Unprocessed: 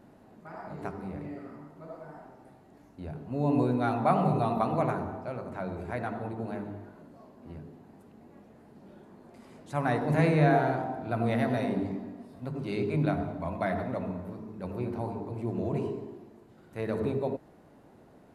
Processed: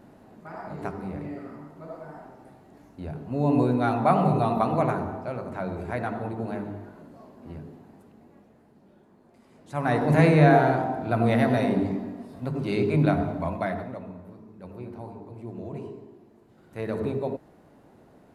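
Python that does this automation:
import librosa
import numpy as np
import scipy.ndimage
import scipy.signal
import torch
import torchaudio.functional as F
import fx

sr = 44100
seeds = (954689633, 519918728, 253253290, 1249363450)

y = fx.gain(x, sr, db=fx.line((7.71, 4.0), (8.9, -5.5), (9.49, -5.5), (10.01, 6.0), (13.42, 6.0), (14.03, -5.5), (16.11, -5.5), (16.77, 1.5)))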